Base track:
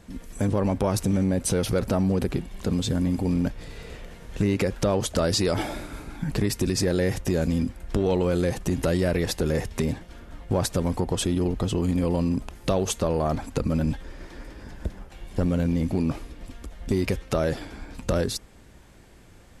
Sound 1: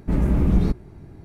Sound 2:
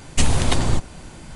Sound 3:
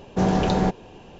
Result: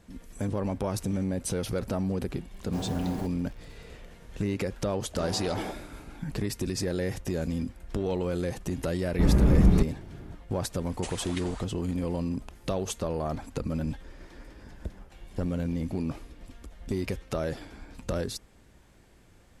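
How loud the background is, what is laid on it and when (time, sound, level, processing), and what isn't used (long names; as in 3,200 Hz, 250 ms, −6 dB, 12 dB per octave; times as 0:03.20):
base track −6.5 dB
0:02.56: mix in 3 −15.5 dB + bit reduction 6 bits
0:05.01: mix in 3 −13 dB + high-pass filter 310 Hz
0:09.11: mix in 1 −1 dB
0:10.85: mix in 2 −17.5 dB + auto-filter high-pass sine 4.2 Hz 390–2,000 Hz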